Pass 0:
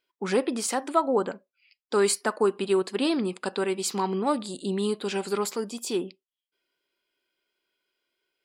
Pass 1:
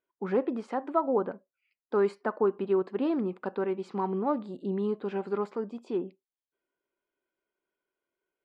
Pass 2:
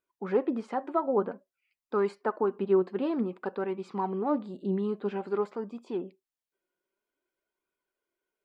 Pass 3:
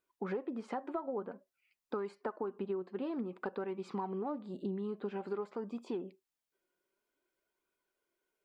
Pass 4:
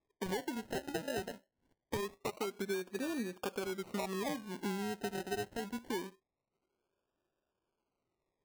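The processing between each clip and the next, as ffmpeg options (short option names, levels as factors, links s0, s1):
-af "lowpass=1300,volume=0.75"
-af "flanger=delay=0.8:depth=4.8:regen=57:speed=0.52:shape=sinusoidal,volume=1.58"
-af "acompressor=threshold=0.0158:ratio=10,volume=1.19"
-af "acrusher=samples=30:mix=1:aa=0.000001:lfo=1:lforange=18:lforate=0.24"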